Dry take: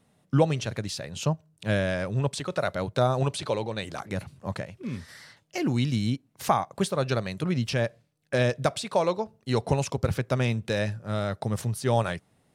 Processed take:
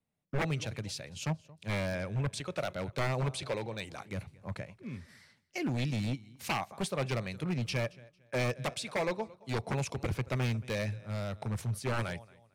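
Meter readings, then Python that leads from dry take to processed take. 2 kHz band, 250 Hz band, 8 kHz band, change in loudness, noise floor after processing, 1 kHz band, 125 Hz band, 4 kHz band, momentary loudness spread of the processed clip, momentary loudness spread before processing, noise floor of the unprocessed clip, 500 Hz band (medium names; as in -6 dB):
-4.0 dB, -8.0 dB, -5.5 dB, -7.5 dB, -69 dBFS, -9.0 dB, -6.5 dB, -5.5 dB, 9 LU, 10 LU, -67 dBFS, -9.0 dB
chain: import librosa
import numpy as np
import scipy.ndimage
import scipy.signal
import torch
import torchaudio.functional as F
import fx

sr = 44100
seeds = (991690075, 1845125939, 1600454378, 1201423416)

y = fx.low_shelf(x, sr, hz=64.0, db=9.5)
y = fx.echo_feedback(y, sr, ms=226, feedback_pct=41, wet_db=-21.0)
y = 10.0 ** (-19.5 / 20.0) * (np.abs((y / 10.0 ** (-19.5 / 20.0) + 3.0) % 4.0 - 2.0) - 1.0)
y = fx.peak_eq(y, sr, hz=2300.0, db=6.5, octaves=0.32)
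y = fx.band_widen(y, sr, depth_pct=40)
y = y * librosa.db_to_amplitude(-6.5)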